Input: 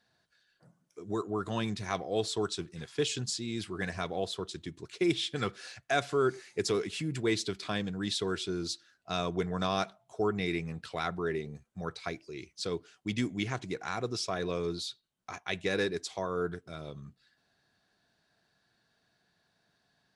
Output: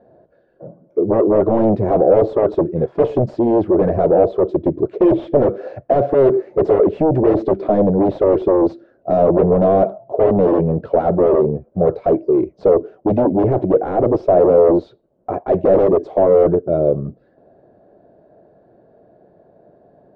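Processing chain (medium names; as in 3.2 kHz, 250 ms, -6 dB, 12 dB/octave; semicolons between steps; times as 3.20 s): peaking EQ 350 Hz +8 dB 0.87 oct; in parallel at -7 dB: sine folder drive 19 dB, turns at -11 dBFS; on the sum: resonant low-pass 580 Hz, resonance Q 4.9; trim +2.5 dB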